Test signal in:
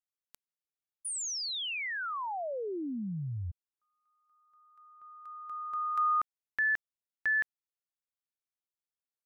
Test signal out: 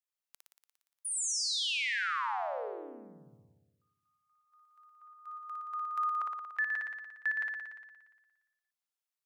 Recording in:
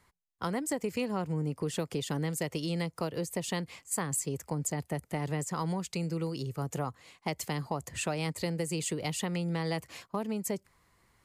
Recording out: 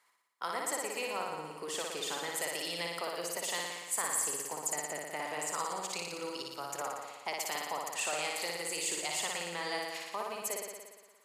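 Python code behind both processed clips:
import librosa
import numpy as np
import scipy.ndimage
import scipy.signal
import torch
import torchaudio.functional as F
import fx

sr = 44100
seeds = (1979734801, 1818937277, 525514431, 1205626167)

p1 = scipy.signal.sosfilt(scipy.signal.butter(2, 720.0, 'highpass', fs=sr, output='sos'), x)
p2 = fx.level_steps(p1, sr, step_db=23)
p3 = p1 + (p2 * librosa.db_to_amplitude(-1.0))
p4 = fx.room_flutter(p3, sr, wall_m=10.0, rt60_s=1.3)
y = p4 * librosa.db_to_amplitude(-2.5)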